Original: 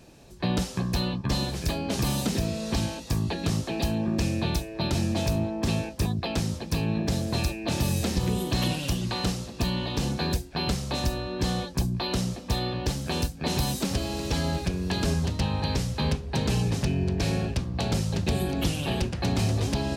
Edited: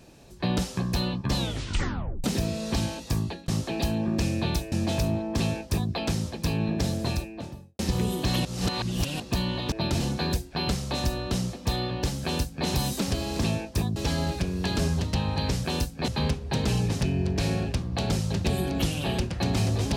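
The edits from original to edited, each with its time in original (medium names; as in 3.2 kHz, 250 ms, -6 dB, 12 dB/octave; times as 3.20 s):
1.36 s: tape stop 0.88 s
3.19–3.48 s: fade out
4.72–5.00 s: move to 10.00 s
5.63–6.20 s: copy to 14.22 s
7.20–8.07 s: studio fade out
8.73–9.48 s: reverse
11.31–12.14 s: delete
13.06–13.50 s: copy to 15.90 s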